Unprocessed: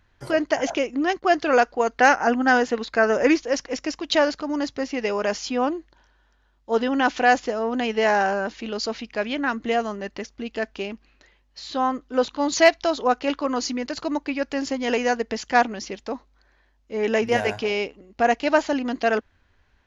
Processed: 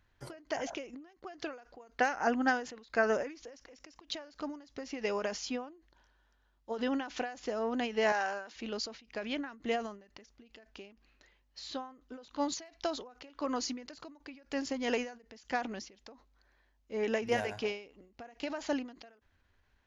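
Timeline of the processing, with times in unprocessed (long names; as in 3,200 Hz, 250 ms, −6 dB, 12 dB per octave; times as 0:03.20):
0:08.12–0:08.56: high-pass filter 970 Hz 6 dB per octave
whole clip: high-shelf EQ 6,100 Hz +3 dB; every ending faded ahead of time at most 120 dB per second; level −8.5 dB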